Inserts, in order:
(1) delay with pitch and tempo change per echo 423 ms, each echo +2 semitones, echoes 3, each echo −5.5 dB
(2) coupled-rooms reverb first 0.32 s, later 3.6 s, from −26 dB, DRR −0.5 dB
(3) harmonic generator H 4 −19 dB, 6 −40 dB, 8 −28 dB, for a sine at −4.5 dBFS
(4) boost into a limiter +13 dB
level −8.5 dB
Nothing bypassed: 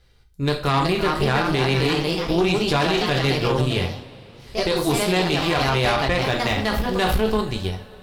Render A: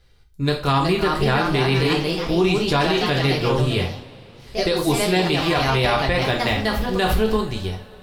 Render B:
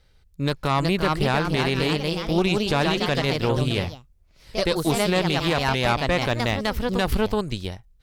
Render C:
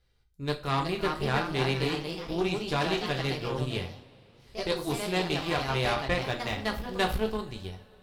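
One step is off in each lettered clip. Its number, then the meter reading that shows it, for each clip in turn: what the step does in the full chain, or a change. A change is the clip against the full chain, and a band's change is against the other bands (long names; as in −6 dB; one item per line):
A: 3, change in integrated loudness +1.0 LU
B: 2, change in crest factor +2.0 dB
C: 4, change in crest factor +6.0 dB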